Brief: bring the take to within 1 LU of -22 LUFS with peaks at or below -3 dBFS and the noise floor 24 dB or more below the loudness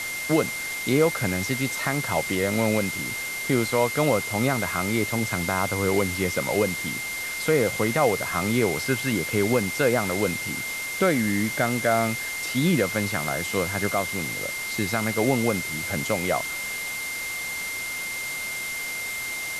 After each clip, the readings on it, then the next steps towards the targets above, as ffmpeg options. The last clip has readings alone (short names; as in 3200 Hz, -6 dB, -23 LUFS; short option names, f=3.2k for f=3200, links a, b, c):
steady tone 2100 Hz; tone level -30 dBFS; noise floor -31 dBFS; noise floor target -49 dBFS; loudness -24.5 LUFS; peak -8.0 dBFS; loudness target -22.0 LUFS
-> -af "bandreject=f=2.1k:w=30"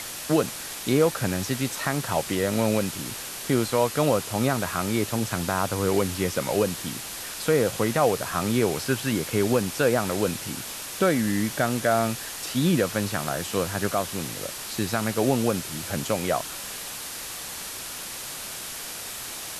steady tone none; noise floor -36 dBFS; noise floor target -50 dBFS
-> -af "afftdn=nr=14:nf=-36"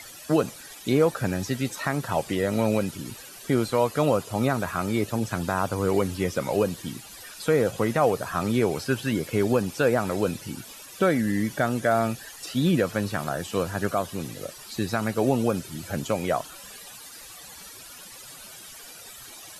noise floor -44 dBFS; noise floor target -50 dBFS
-> -af "afftdn=nr=6:nf=-44"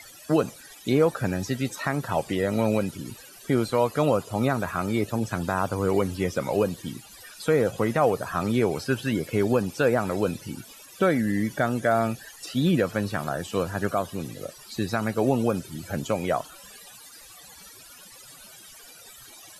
noise floor -48 dBFS; noise floor target -50 dBFS
-> -af "afftdn=nr=6:nf=-48"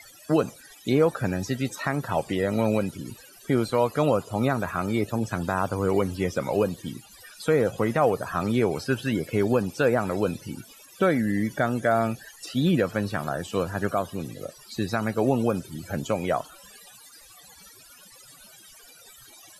noise floor -51 dBFS; loudness -26.0 LUFS; peak -9.0 dBFS; loudness target -22.0 LUFS
-> -af "volume=4dB"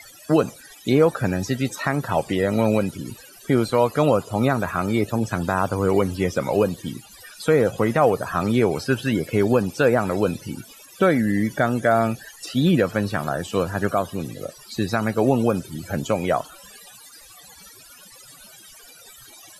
loudness -22.0 LUFS; peak -5.0 dBFS; noise floor -47 dBFS